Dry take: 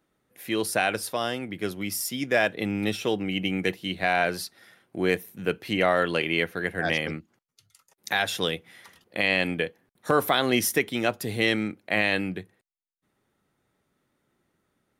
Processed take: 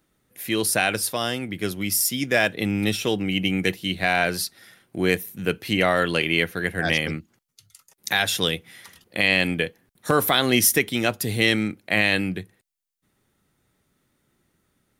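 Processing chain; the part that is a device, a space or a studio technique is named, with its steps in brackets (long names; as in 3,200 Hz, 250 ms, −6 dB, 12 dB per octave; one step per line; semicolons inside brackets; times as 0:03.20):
smiley-face EQ (low-shelf EQ 86 Hz +5.5 dB; parametric band 700 Hz −4.5 dB 2.6 octaves; high-shelf EQ 5,500 Hz +5 dB)
level +5 dB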